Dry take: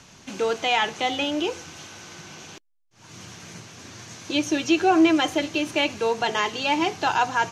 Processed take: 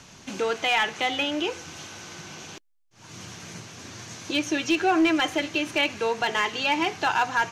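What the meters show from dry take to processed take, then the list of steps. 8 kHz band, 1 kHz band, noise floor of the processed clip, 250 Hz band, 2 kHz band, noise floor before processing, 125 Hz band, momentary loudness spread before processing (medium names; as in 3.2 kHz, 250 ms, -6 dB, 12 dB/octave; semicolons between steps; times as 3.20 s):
-1.5 dB, -2.0 dB, -56 dBFS, -3.5 dB, +1.0 dB, -57 dBFS, -1.5 dB, 22 LU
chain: dynamic bell 1.9 kHz, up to +6 dB, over -37 dBFS, Q 0.9; in parallel at +1 dB: compression 6:1, threshold -31 dBFS, peak gain reduction 17 dB; on the sum: hard clipper -9.5 dBFS, distortion -22 dB; trim -5.5 dB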